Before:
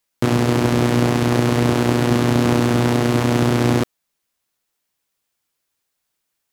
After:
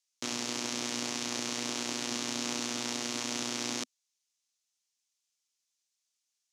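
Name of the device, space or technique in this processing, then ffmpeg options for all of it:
piezo pickup straight into a mixer: -af "lowpass=5100,aderivative,equalizer=f=250:t=o:w=0.67:g=9,equalizer=f=1600:t=o:w=0.67:g=-4,equalizer=f=6300:t=o:w=0.67:g=8"

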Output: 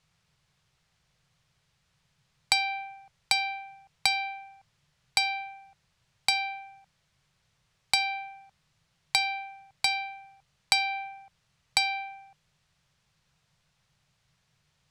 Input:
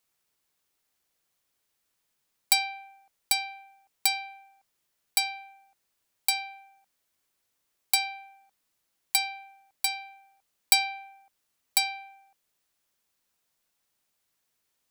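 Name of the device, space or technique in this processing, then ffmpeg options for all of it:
jukebox: -af "lowpass=5200,lowshelf=f=200:t=q:w=3:g=10.5,acompressor=threshold=0.0282:ratio=4,volume=2.82"

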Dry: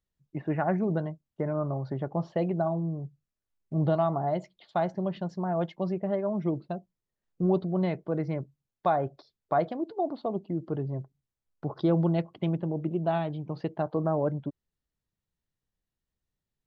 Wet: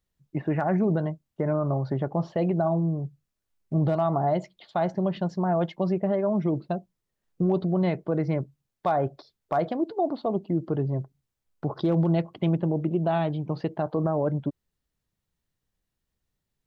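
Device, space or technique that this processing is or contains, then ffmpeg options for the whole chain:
clipper into limiter: -af "asoftclip=type=hard:threshold=0.158,alimiter=limit=0.0841:level=0:latency=1:release=64,volume=1.88"

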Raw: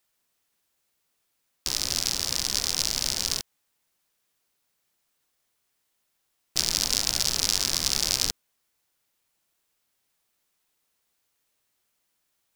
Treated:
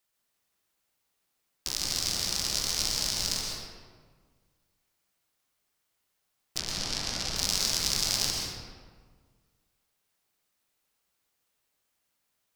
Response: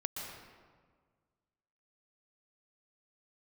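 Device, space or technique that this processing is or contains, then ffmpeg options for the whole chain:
stairwell: -filter_complex "[0:a]asplit=3[s0][s1][s2];[s0]afade=t=out:st=6.57:d=0.02[s3];[s1]aemphasis=mode=reproduction:type=50fm,afade=t=in:st=6.57:d=0.02,afade=t=out:st=7.35:d=0.02[s4];[s2]afade=t=in:st=7.35:d=0.02[s5];[s3][s4][s5]amix=inputs=3:normalize=0[s6];[1:a]atrim=start_sample=2205[s7];[s6][s7]afir=irnorm=-1:irlink=0,volume=0.708"

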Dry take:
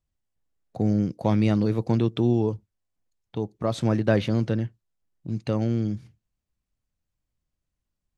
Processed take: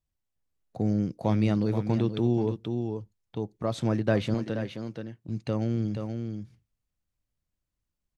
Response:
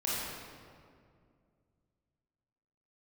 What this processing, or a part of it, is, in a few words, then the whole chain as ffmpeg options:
ducked delay: -filter_complex "[0:a]asplit=3[s0][s1][s2];[s1]adelay=478,volume=0.531[s3];[s2]apad=whole_len=381660[s4];[s3][s4]sidechaincompress=threshold=0.0501:ratio=3:attack=20:release=220[s5];[s0][s5]amix=inputs=2:normalize=0,asettb=1/sr,asplit=3[s6][s7][s8];[s6]atrim=end=4.344[s9];[s7]atrim=start=4.34:end=5.29,asetpts=PTS-STARTPTS,afade=t=in:d=0.004:c=qsin,afade=t=out:st=0.946:d=0.004:c=qsin,highpass=f=220:p=1[s10];[s8]atrim=start=5.286[s11];[s9][s10]acrossfade=d=0.004:c1=hsin:c2=qsin[s12];[s12][s11]acrossfade=d=0.004:c1=qsin:c2=hsin,volume=0.668"

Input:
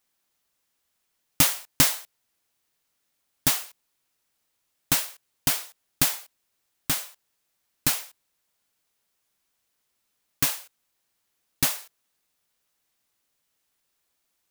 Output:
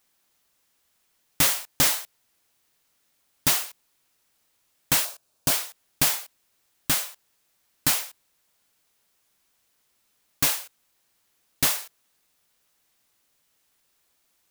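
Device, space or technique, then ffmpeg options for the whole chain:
saturation between pre-emphasis and de-emphasis: -filter_complex "[0:a]highshelf=f=5200:g=7.5,asoftclip=type=tanh:threshold=0.168,highshelf=f=5200:g=-7.5,asettb=1/sr,asplit=3[s0][s1][s2];[s0]atrim=end=5.054[s3];[s1]atrim=start=5.05:end=5.52,asetpts=PTS-STARTPTS,afade=t=in:d=0.004:c=qsin,afade=t=out:st=0.466:d=0.004:c=qsin,equalizer=f=630:t=o:w=0.33:g=8,equalizer=f=2000:t=o:w=0.33:g=-11,equalizer=f=3150:t=o:w=0.33:g=-5,equalizer=f=16000:t=o:w=0.33:g=-4[s4];[s2]atrim=start=5.516[s5];[s3][s4]acrossfade=d=0.004:c1=hsin:c2=qsin[s6];[s6][s5]acrossfade=d=0.004:c1=qsin:c2=hsin,volume=2"

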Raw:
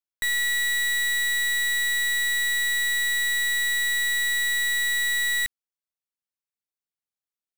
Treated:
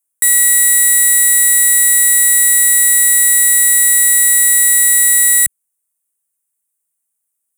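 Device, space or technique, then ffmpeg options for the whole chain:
budget condenser microphone: -af "highpass=92,highshelf=f=6500:t=q:w=3:g=13.5,volume=2"

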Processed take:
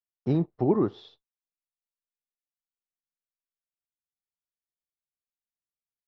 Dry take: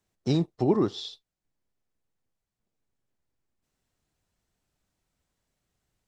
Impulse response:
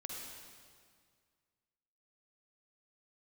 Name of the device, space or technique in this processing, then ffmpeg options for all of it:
hearing-loss simulation: -af "lowpass=1700,agate=range=0.0224:threshold=0.002:ratio=3:detection=peak"

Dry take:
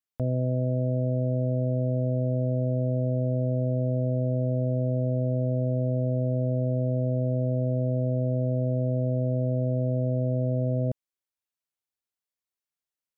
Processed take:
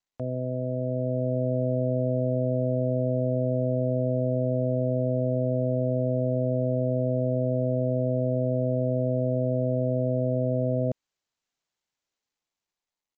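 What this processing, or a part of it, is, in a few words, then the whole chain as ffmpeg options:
Bluetooth headset: -af "highpass=f=240:p=1,dynaudnorm=f=160:g=13:m=1.68,aresample=16000,aresample=44100" -ar 16000 -c:a sbc -b:a 64k

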